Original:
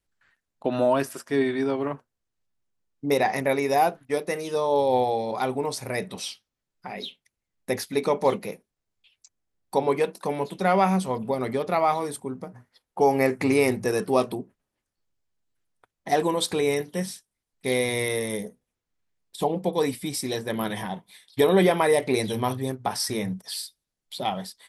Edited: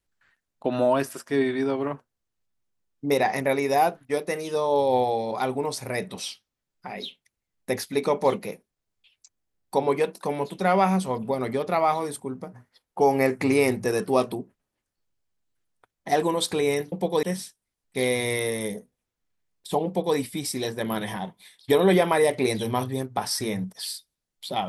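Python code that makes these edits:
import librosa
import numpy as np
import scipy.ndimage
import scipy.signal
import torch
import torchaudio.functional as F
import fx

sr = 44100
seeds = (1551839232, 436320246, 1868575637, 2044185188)

y = fx.edit(x, sr, fx.duplicate(start_s=19.55, length_s=0.31, to_s=16.92), tone=tone)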